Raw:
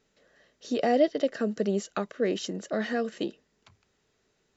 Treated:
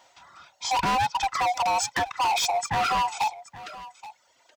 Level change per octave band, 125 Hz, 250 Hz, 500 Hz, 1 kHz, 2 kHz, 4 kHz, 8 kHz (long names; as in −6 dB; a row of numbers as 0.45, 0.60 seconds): +1.0 dB, −11.5 dB, −7.5 dB, +14.0 dB, +8.5 dB, +10.5 dB, can't be measured